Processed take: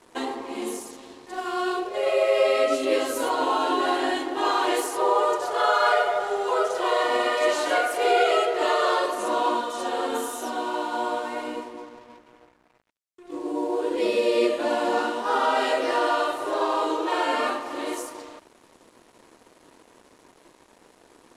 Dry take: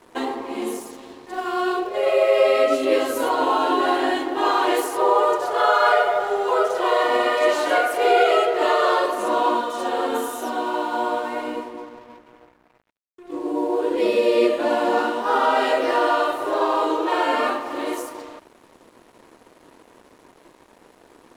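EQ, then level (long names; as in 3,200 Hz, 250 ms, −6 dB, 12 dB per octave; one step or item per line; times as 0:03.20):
low-pass filter 9,700 Hz 12 dB per octave
high-shelf EQ 4,800 Hz +9 dB
−4.0 dB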